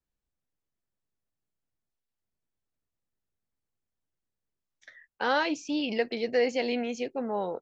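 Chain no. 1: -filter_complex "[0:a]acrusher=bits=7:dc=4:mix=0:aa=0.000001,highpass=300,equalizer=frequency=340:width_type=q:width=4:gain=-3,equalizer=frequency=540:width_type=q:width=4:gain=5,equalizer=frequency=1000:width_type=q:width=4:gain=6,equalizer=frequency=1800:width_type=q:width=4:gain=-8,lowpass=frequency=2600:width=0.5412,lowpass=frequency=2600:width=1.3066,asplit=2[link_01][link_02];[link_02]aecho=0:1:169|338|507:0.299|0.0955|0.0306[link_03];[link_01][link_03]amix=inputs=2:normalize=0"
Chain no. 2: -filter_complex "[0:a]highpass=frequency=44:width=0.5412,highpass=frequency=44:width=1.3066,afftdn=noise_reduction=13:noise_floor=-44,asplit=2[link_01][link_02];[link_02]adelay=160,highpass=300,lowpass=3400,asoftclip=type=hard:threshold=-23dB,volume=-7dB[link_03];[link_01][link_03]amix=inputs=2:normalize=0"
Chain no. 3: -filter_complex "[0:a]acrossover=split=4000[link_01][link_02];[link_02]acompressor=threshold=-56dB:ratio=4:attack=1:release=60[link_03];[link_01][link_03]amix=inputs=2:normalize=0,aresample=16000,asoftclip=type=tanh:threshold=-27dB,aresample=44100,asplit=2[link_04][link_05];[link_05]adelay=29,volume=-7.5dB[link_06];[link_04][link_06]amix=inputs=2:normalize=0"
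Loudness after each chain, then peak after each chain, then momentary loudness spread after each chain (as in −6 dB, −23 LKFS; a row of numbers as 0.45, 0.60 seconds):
−28.5, −29.0, −33.0 LKFS; −13.0, −13.0, −23.5 dBFS; 7, 6, 3 LU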